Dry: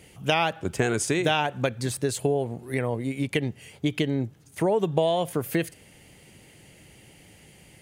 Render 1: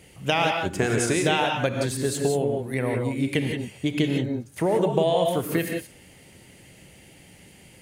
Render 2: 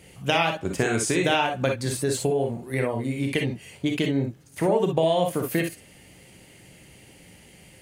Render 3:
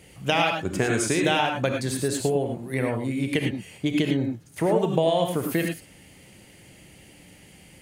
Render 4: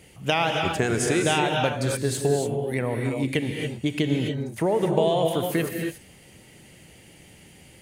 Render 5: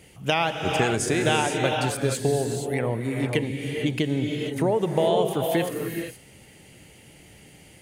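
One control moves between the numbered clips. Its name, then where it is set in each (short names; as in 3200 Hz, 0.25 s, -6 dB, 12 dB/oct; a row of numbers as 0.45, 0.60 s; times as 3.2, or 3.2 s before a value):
non-linear reverb, gate: 200, 80, 130, 310, 500 ms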